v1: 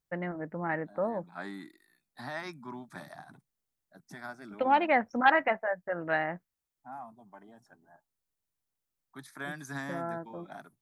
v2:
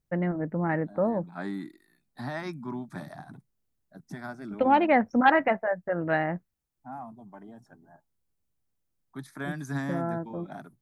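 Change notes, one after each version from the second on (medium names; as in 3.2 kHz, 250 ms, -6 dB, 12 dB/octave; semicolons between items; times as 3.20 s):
master: add bass shelf 450 Hz +11.5 dB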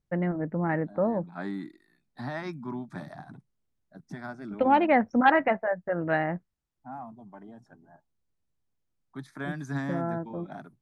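master: add distance through air 53 m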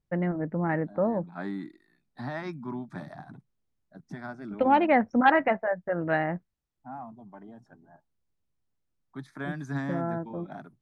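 second voice: add treble shelf 5.6 kHz -5.5 dB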